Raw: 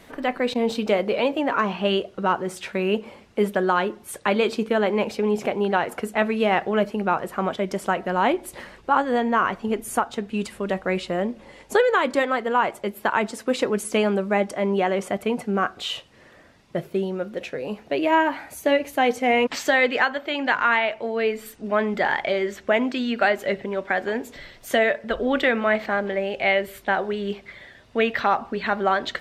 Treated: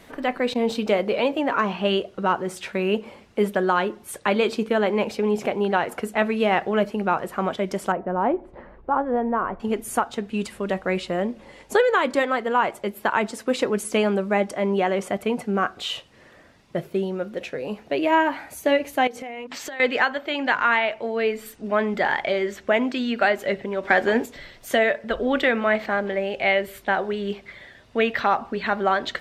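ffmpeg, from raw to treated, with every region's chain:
-filter_complex "[0:a]asettb=1/sr,asplit=3[a][b][c];[a]atrim=end=7.924[d];[b]atrim=start=7.92:end=9.6,asetpts=PTS-STARTPTS,afade=t=in:d=0.004:c=qsin,afade=t=out:st=1.676:d=0.004:c=qsin,lowpass=1k,asubboost=boost=9:cutoff=55[e];[c]atrim=start=9.596[f];[d][e]acrossfade=d=0.004:c1=hsin:c2=qsin[g];[g][f]acrossfade=d=0.004:c1=qsin:c2=hsin,asettb=1/sr,asplit=3[h][i][j];[h]atrim=end=19.074[k];[i]atrim=start=19.07:end=19.8,asetpts=PTS-STARTPTS,afade=t=in:d=0.004:c=qsin,afade=t=out:st=0.726:d=0.004:c=qsin,bandreject=f=50:t=h:w=6,bandreject=f=100:t=h:w=6,bandreject=f=150:t=h:w=6,bandreject=f=200:t=h:w=6,bandreject=f=250:t=h:w=6,bandreject=f=300:t=h:w=6,bandreject=f=350:t=h:w=6,bandreject=f=400:t=h:w=6,bandreject=f=450:t=h:w=6,acompressor=threshold=-30dB:ratio=20:attack=3.2:release=140:knee=1:detection=peak[l];[j]atrim=start=19.796[m];[k][l]acrossfade=d=0.004:c1=hsin:c2=qsin[n];[n][m]acrossfade=d=0.004:c1=qsin:c2=hsin,asettb=1/sr,asplit=3[o][p][q];[o]atrim=end=23.834[r];[p]atrim=start=23.83:end=24.26,asetpts=PTS-STARTPTS,afade=t=in:d=0.004:c=qsin,afade=t=out:st=0.426:d=0.004:c=qsin,acontrast=45,asplit=2[s][t];[t]adelay=13,volume=-12dB[u];[s][u]amix=inputs=2:normalize=0,atrim=end_sample=18963[v];[q]atrim=start=24.256[w];[r][v]acrossfade=d=0.004:c1=hsin:c2=qsin[x];[x][w]acrossfade=d=0.004:c1=qsin:c2=hsin"

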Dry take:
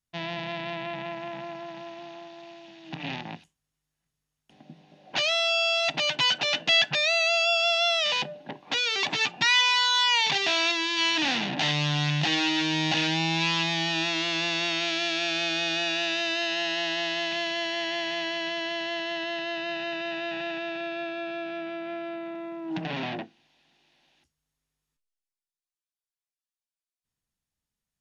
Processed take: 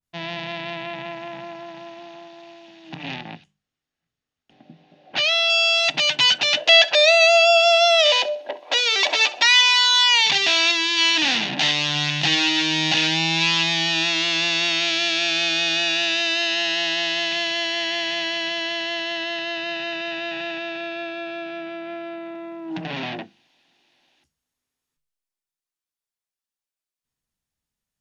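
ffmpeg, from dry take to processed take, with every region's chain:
-filter_complex "[0:a]asettb=1/sr,asplit=3[a][b][c];[a]atrim=end=3.144[d];[b]atrim=start=3.14:end=5.5,asetpts=PTS-STARTPTS,afade=t=in:d=0.004:c=qsin,afade=t=out:st=2.356:d=0.004:c=qsin,lowpass=4.7k,bandreject=f=980:w=11[e];[c]atrim=start=5.496[f];[d][e]acrossfade=d=0.004:c1=hsin:c2=qsin[g];[g][f]acrossfade=d=0.004:c1=qsin:c2=hsin,asettb=1/sr,asplit=3[h][i][j];[h]atrim=end=6.574[k];[i]atrim=start=6.57:end=9.46,asetpts=PTS-STARTPTS,afade=t=in:d=0.004:c=qsin,afade=t=out:st=2.886:d=0.004:c=qsin,highpass=f=540:t=q:w=4.5,aecho=1:1:3.1:0.33,atrim=end_sample=127449,aecho=1:1:65|130|195:0.119|0.0392|0.0129,atrim=end_sample=127449[l];[j]atrim=start=9.456[m];[k][l]acrossfade=d=0.004:c1=hsin:c2=qsin[n];[n][m]acrossfade=d=0.004:c1=qsin:c2=hsin,bandreject=f=50:t=h:w=6,bandreject=f=100:t=h:w=6,bandreject=f=150:t=h:w=6,bandreject=f=200:t=h:w=6,adynamicequalizer=threshold=0.0158:dfrequency=1800:dqfactor=0.7:tfrequency=1800:tqfactor=0.7:attack=5:release=100:ratio=0.375:range=3:mode=boostabove:tftype=highshelf,volume=2dB"

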